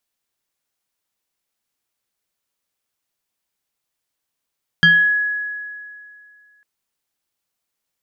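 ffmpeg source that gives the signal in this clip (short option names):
-f lavfi -i "aevalsrc='0.447*pow(10,-3*t/2.31)*sin(2*PI*1680*t+0.98*pow(10,-3*t/0.45)*sin(2*PI*0.9*1680*t))':d=1.8:s=44100"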